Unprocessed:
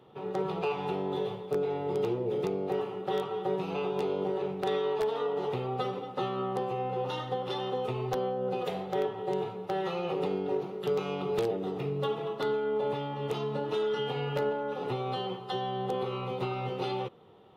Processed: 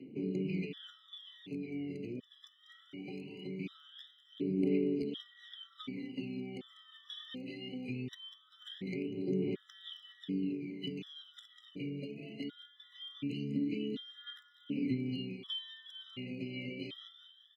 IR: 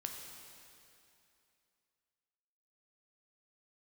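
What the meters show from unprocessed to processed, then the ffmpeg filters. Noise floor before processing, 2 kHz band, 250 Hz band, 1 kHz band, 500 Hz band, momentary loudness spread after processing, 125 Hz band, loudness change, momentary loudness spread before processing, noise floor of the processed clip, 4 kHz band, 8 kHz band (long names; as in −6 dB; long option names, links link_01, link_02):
−42 dBFS, −7.5 dB, 0.0 dB, −31.5 dB, −14.0 dB, 17 LU, −6.0 dB, −7.5 dB, 4 LU, −65 dBFS, −2.5 dB, can't be measured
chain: -filter_complex "[0:a]asplit=3[link_01][link_02][link_03];[link_01]bandpass=frequency=270:width_type=q:width=8,volume=0dB[link_04];[link_02]bandpass=frequency=2290:width_type=q:width=8,volume=-6dB[link_05];[link_03]bandpass=frequency=3010:width_type=q:width=8,volume=-9dB[link_06];[link_04][link_05][link_06]amix=inputs=3:normalize=0,aecho=1:1:195|390|585|780:0.282|0.107|0.0407|0.0155,acrossover=split=300[link_07][link_08];[link_08]acompressor=threshold=-55dB:ratio=6[link_09];[link_07][link_09]amix=inputs=2:normalize=0,highshelf=frequency=4900:gain=8,aphaser=in_gain=1:out_gain=1:delay=1.8:decay=0.69:speed=0.21:type=triangular,equalizer=frequency=830:width_type=o:width=1.9:gain=-7.5,afftfilt=real='re*gt(sin(2*PI*0.68*pts/sr)*(1-2*mod(floor(b*sr/1024/1000),2)),0)':imag='im*gt(sin(2*PI*0.68*pts/sr)*(1-2*mod(floor(b*sr/1024/1000),2)),0)':win_size=1024:overlap=0.75,volume=13.5dB"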